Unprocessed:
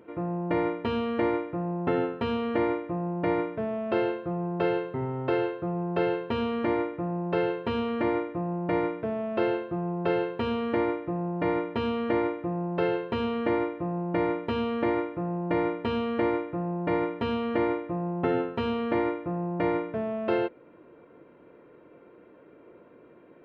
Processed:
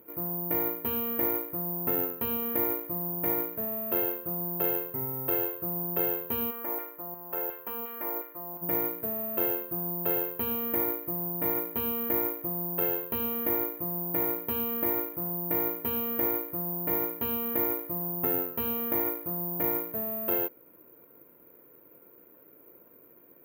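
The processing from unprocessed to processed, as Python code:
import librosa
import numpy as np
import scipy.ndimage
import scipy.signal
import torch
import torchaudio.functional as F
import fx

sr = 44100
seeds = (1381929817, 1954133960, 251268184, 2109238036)

y = fx.filter_lfo_bandpass(x, sr, shape='saw_down', hz=2.8, low_hz=750.0, high_hz=1700.0, q=0.88, at=(6.5, 8.61), fade=0.02)
y = (np.kron(scipy.signal.resample_poly(y, 1, 3), np.eye(3)[0]) * 3)[:len(y)]
y = y * librosa.db_to_amplitude(-7.0)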